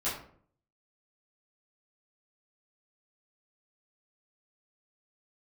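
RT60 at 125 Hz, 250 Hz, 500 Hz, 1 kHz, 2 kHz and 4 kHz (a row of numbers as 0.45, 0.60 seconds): 0.75, 0.70, 0.60, 0.50, 0.40, 0.30 seconds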